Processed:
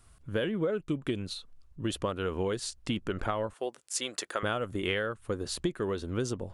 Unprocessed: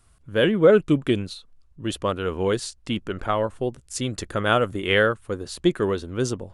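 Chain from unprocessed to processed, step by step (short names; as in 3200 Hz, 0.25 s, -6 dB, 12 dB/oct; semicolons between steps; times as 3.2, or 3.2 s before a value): 3.53–4.43 HPF 580 Hz 12 dB/oct; compressor 12:1, threshold -27 dBFS, peak gain reduction 17 dB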